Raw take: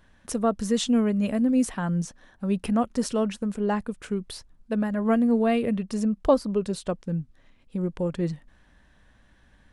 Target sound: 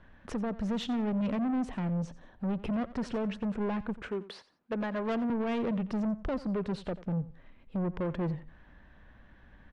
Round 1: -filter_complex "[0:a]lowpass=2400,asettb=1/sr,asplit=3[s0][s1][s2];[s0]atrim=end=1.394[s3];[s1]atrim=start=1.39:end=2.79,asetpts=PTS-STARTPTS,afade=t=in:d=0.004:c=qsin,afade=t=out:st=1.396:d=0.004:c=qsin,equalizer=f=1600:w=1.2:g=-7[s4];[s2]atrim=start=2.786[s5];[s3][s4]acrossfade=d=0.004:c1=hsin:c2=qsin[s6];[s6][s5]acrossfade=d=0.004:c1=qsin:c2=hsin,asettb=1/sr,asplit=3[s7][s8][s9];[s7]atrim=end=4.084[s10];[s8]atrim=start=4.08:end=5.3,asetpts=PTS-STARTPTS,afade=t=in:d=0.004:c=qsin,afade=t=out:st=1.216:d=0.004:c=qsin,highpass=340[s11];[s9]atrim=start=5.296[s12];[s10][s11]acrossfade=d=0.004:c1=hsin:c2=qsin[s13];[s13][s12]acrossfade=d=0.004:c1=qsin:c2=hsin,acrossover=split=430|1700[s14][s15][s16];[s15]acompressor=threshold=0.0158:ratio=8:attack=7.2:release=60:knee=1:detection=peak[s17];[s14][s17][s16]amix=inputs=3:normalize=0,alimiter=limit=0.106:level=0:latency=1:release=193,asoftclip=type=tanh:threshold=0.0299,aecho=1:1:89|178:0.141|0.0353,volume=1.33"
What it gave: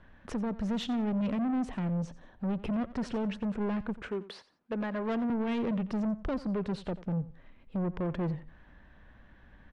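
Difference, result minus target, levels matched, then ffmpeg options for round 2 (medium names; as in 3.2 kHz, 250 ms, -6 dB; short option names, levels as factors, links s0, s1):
compression: peak gain reduction +6.5 dB
-filter_complex "[0:a]lowpass=2400,asettb=1/sr,asplit=3[s0][s1][s2];[s0]atrim=end=1.394[s3];[s1]atrim=start=1.39:end=2.79,asetpts=PTS-STARTPTS,afade=t=in:d=0.004:c=qsin,afade=t=out:st=1.396:d=0.004:c=qsin,equalizer=f=1600:w=1.2:g=-7[s4];[s2]atrim=start=2.786[s5];[s3][s4]acrossfade=d=0.004:c1=hsin:c2=qsin[s6];[s6][s5]acrossfade=d=0.004:c1=qsin:c2=hsin,asettb=1/sr,asplit=3[s7][s8][s9];[s7]atrim=end=4.084[s10];[s8]atrim=start=4.08:end=5.3,asetpts=PTS-STARTPTS,afade=t=in:d=0.004:c=qsin,afade=t=out:st=1.216:d=0.004:c=qsin,highpass=340[s11];[s9]atrim=start=5.296[s12];[s10][s11]acrossfade=d=0.004:c1=hsin:c2=qsin[s13];[s13][s12]acrossfade=d=0.004:c1=qsin:c2=hsin,acrossover=split=430|1700[s14][s15][s16];[s15]acompressor=threshold=0.0376:ratio=8:attack=7.2:release=60:knee=1:detection=peak[s17];[s14][s17][s16]amix=inputs=3:normalize=0,alimiter=limit=0.106:level=0:latency=1:release=193,asoftclip=type=tanh:threshold=0.0299,aecho=1:1:89|178:0.141|0.0353,volume=1.33"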